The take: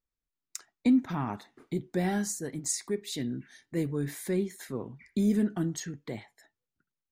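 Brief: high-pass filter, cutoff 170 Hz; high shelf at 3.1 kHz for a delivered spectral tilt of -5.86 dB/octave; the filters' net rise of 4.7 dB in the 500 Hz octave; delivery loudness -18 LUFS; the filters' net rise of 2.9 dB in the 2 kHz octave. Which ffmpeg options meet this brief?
-af "highpass=170,equalizer=f=500:t=o:g=6.5,equalizer=f=2000:t=o:g=5,highshelf=f=3100:g=-6.5,volume=4.47"

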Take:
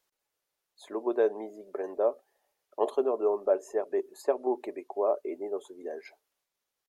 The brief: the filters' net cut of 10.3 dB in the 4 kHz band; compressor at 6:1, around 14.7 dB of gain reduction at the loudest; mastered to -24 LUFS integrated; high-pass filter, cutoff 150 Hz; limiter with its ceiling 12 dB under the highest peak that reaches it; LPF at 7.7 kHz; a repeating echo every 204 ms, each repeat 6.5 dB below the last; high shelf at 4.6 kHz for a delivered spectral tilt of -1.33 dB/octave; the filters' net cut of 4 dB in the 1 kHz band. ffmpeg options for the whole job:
-af "highpass=150,lowpass=7700,equalizer=f=1000:t=o:g=-5,equalizer=f=4000:t=o:g=-8,highshelf=f=4600:g=-8.5,acompressor=threshold=0.0126:ratio=6,alimiter=level_in=4.73:limit=0.0631:level=0:latency=1,volume=0.211,aecho=1:1:204|408|612|816|1020|1224:0.473|0.222|0.105|0.0491|0.0231|0.0109,volume=14.1"

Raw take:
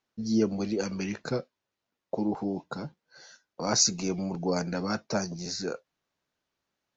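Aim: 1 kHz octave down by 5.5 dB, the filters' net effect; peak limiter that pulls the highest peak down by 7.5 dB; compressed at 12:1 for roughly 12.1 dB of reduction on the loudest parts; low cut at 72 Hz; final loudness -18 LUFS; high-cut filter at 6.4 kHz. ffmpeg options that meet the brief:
-af "highpass=72,lowpass=6400,equalizer=f=1000:t=o:g=-8,acompressor=threshold=0.0251:ratio=12,volume=12.6,alimiter=limit=0.398:level=0:latency=1"

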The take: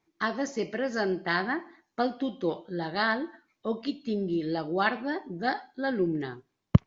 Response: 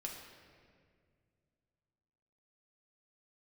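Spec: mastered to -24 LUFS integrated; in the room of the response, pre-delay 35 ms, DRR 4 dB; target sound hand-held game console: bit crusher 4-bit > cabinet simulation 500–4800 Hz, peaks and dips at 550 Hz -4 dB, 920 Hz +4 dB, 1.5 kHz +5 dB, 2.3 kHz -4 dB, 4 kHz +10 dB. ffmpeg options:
-filter_complex "[0:a]asplit=2[s0][s1];[1:a]atrim=start_sample=2205,adelay=35[s2];[s1][s2]afir=irnorm=-1:irlink=0,volume=0.75[s3];[s0][s3]amix=inputs=2:normalize=0,acrusher=bits=3:mix=0:aa=0.000001,highpass=500,equalizer=f=550:t=q:w=4:g=-4,equalizer=f=920:t=q:w=4:g=4,equalizer=f=1500:t=q:w=4:g=5,equalizer=f=2300:t=q:w=4:g=-4,equalizer=f=4000:t=q:w=4:g=10,lowpass=f=4800:w=0.5412,lowpass=f=4800:w=1.3066,volume=1.5"

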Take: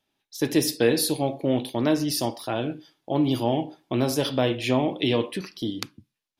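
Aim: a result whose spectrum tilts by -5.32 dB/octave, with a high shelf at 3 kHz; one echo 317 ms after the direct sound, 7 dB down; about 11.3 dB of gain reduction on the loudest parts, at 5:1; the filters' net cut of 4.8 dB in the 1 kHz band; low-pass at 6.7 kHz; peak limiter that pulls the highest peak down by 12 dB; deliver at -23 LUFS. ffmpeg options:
-af "lowpass=6700,equalizer=f=1000:t=o:g=-6.5,highshelf=f=3000:g=-4,acompressor=threshold=0.0316:ratio=5,alimiter=level_in=1.26:limit=0.0631:level=0:latency=1,volume=0.794,aecho=1:1:317:0.447,volume=4.73"

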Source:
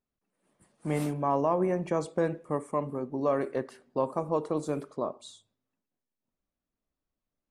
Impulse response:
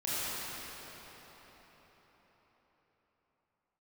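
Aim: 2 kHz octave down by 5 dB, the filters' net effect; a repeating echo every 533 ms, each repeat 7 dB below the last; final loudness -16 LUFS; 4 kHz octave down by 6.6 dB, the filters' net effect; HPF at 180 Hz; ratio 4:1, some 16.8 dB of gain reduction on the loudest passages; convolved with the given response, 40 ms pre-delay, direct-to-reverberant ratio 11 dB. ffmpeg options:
-filter_complex "[0:a]highpass=180,equalizer=f=2000:t=o:g=-5,equalizer=f=4000:t=o:g=-6.5,acompressor=threshold=0.00631:ratio=4,aecho=1:1:533|1066|1599|2132|2665:0.447|0.201|0.0905|0.0407|0.0183,asplit=2[s0][s1];[1:a]atrim=start_sample=2205,adelay=40[s2];[s1][s2]afir=irnorm=-1:irlink=0,volume=0.112[s3];[s0][s3]amix=inputs=2:normalize=0,volume=29.9"

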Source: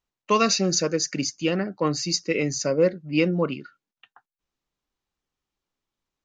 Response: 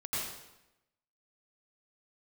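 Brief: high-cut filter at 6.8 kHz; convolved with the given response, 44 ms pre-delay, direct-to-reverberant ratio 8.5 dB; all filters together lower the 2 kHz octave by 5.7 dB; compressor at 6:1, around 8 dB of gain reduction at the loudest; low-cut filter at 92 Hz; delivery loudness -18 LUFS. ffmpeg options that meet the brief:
-filter_complex "[0:a]highpass=92,lowpass=6800,equalizer=f=2000:t=o:g=-8,acompressor=threshold=0.0631:ratio=6,asplit=2[s0][s1];[1:a]atrim=start_sample=2205,adelay=44[s2];[s1][s2]afir=irnorm=-1:irlink=0,volume=0.224[s3];[s0][s3]amix=inputs=2:normalize=0,volume=3.55"

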